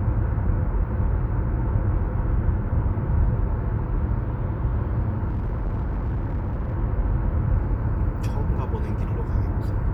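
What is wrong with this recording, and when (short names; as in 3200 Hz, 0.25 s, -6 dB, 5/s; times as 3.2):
5.28–6.75 clipped -22 dBFS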